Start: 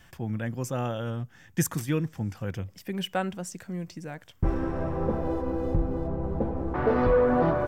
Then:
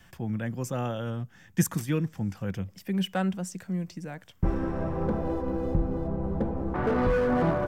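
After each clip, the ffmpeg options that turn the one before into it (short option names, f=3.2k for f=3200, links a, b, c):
-filter_complex "[0:a]equalizer=f=190:t=o:w=0.25:g=7.5,acrossover=split=300|1200[a][b][c];[b]volume=24.5dB,asoftclip=hard,volume=-24.5dB[d];[a][d][c]amix=inputs=3:normalize=0,volume=-1dB"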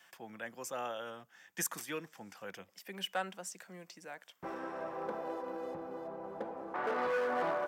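-af "highpass=600,volume=-3dB"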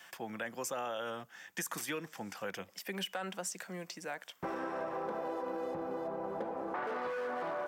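-af "alimiter=level_in=7.5dB:limit=-24dB:level=0:latency=1:release=18,volume=-7.5dB,acompressor=threshold=-42dB:ratio=6,volume=7.5dB"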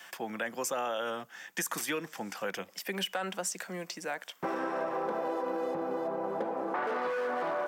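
-af "highpass=170,volume=5dB"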